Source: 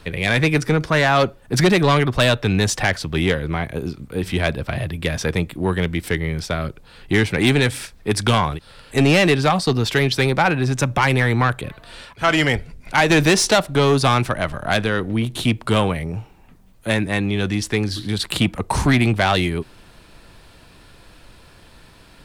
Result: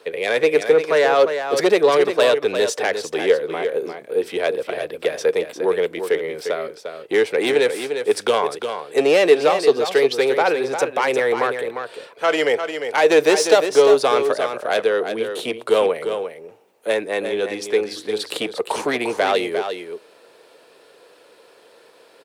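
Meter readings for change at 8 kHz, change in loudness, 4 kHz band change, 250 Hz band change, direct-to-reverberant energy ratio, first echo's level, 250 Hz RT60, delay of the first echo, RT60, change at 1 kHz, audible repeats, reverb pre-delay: −4.0 dB, 0.0 dB, −3.5 dB, −7.5 dB, no reverb audible, −8.0 dB, no reverb audible, 351 ms, no reverb audible, −1.0 dB, 1, no reverb audible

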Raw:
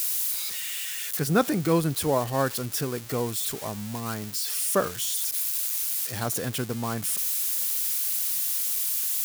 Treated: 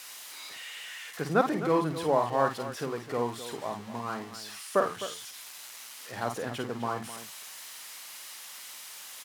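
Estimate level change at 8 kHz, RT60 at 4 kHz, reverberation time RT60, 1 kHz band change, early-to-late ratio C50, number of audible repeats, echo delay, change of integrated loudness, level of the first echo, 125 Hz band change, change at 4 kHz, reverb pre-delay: −15.0 dB, no reverb audible, no reverb audible, +1.5 dB, no reverb audible, 2, 50 ms, −7.0 dB, −5.0 dB, −8.5 dB, −7.5 dB, no reverb audible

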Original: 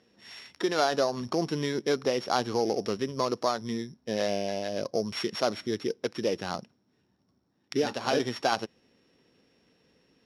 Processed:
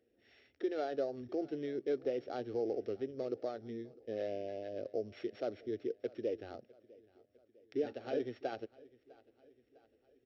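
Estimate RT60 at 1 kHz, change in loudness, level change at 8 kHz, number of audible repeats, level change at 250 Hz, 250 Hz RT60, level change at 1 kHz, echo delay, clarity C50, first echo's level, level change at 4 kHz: no reverb audible, −10.0 dB, below −25 dB, 3, −9.5 dB, no reverb audible, −16.5 dB, 653 ms, no reverb audible, −23.0 dB, −22.5 dB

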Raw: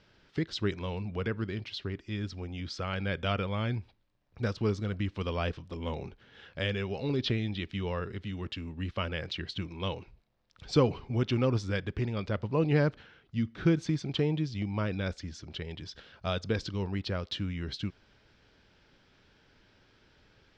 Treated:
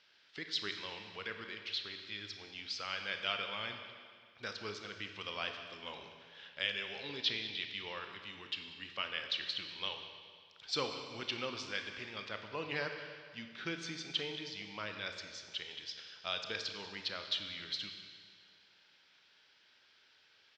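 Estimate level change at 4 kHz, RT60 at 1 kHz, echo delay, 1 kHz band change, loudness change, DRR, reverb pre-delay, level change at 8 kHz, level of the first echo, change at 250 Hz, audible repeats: +2.5 dB, 2.0 s, 191 ms, −5.5 dB, −7.0 dB, 5.0 dB, 29 ms, can't be measured, −16.5 dB, −17.5 dB, 1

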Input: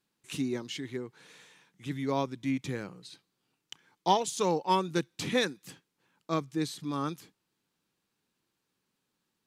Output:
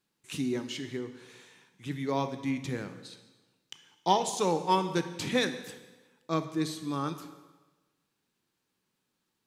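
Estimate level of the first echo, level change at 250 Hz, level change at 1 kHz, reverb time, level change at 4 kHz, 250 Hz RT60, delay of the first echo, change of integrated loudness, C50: no echo audible, +0.5 dB, +0.5 dB, 1.2 s, +0.5 dB, 1.1 s, no echo audible, +0.5 dB, 10.5 dB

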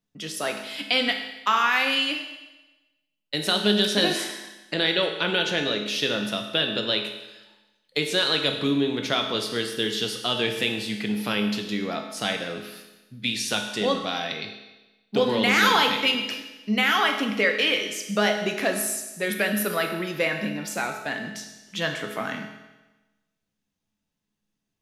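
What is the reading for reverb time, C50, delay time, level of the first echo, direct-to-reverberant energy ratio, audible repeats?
1.1 s, 6.0 dB, no echo audible, no echo audible, 3.0 dB, no echo audible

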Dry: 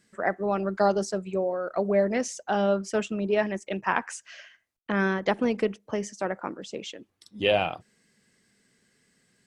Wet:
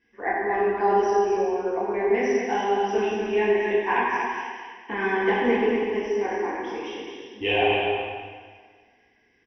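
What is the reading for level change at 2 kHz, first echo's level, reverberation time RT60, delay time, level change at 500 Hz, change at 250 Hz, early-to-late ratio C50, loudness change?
+5.0 dB, −4.5 dB, 1.6 s, 238 ms, +4.0 dB, +0.5 dB, −2.5 dB, +3.5 dB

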